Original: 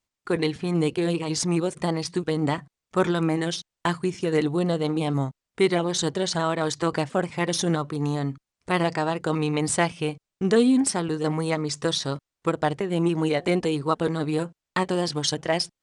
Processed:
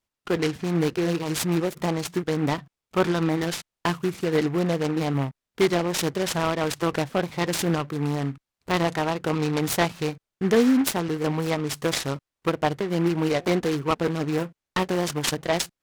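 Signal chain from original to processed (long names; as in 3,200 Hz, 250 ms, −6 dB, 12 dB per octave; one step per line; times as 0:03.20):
short delay modulated by noise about 1,400 Hz, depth 0.056 ms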